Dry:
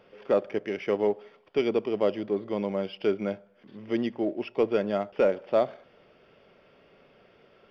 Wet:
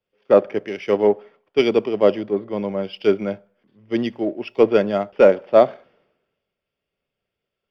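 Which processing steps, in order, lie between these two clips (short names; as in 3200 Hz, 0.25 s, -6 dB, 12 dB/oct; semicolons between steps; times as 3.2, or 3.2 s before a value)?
three-band expander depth 100%; gain +7 dB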